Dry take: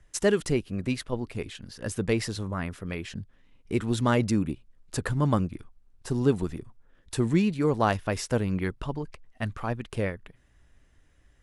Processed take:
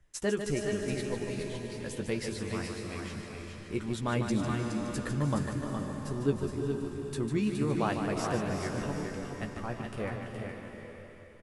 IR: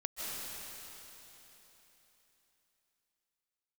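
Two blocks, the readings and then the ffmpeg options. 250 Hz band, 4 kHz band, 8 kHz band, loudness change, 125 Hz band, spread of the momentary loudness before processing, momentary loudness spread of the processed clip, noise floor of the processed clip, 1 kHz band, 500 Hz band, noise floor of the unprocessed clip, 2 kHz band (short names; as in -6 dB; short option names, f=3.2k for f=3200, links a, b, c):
-4.0 dB, -4.0 dB, -4.0 dB, -5.0 dB, -5.0 dB, 14 LU, 10 LU, -48 dBFS, -4.5 dB, -4.0 dB, -62 dBFS, -4.0 dB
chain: -filter_complex "[0:a]asplit=2[a][b];[b]adelay=14,volume=-7dB[c];[a][c]amix=inputs=2:normalize=0,aecho=1:1:418:0.501,asplit=2[d][e];[1:a]atrim=start_sample=2205,adelay=149[f];[e][f]afir=irnorm=-1:irlink=0,volume=-5dB[g];[d][g]amix=inputs=2:normalize=0,volume=-8dB"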